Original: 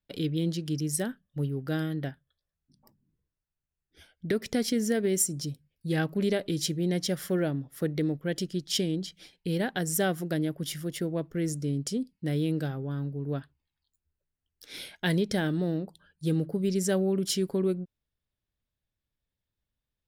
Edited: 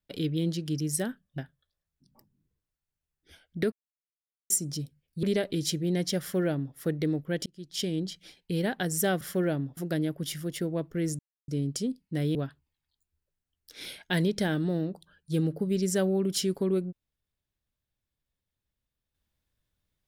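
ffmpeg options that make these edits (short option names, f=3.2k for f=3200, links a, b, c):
-filter_complex "[0:a]asplit=10[a][b][c][d][e][f][g][h][i][j];[a]atrim=end=1.382[k];[b]atrim=start=2.058:end=4.4,asetpts=PTS-STARTPTS,afade=t=out:st=2.338:d=0.004:c=hsin[l];[c]atrim=start=4.4:end=5.18,asetpts=PTS-STARTPTS,volume=0[m];[d]atrim=start=5.18:end=5.912,asetpts=PTS-STARTPTS,afade=t=in:d=0.004:c=hsin[n];[e]atrim=start=6.188:end=8.42,asetpts=PTS-STARTPTS,afade=t=out:st=2.228:d=0.004:c=hsin[o];[f]atrim=start=8.42:end=10.172,asetpts=PTS-STARTPTS,afade=t=in:d=0.54[p];[g]atrim=start=7.158:end=7.722[q];[h]atrim=start=10.168:end=11.59,asetpts=PTS-STARTPTS,afade=t=out:st=1.418:d=0.004:c=hsin,apad=pad_dur=0.29[r];[i]atrim=start=11.59:end=12.462,asetpts=PTS-STARTPTS,afade=t=in:d=0.004:c=hsin[s];[j]atrim=start=13.278[t];[l][m][n]concat=n=3:v=0:a=1[u];[k][u]acrossfade=d=0.004:c1=hsin:c2=hsin[v];[o][p]concat=n=2:v=0:a=1[w];[v][w]acrossfade=d=0.004:c1=hsin:c2=hsin[x];[x][q]acrossfade=d=0.004:c1=hsin:c2=hsin[y];[r][s]concat=n=2:v=0:a=1[z];[y][z]acrossfade=d=0.004:c1=hsin:c2=hsin[aa];[aa][t]acrossfade=d=0.004:c1=hsin:c2=hsin"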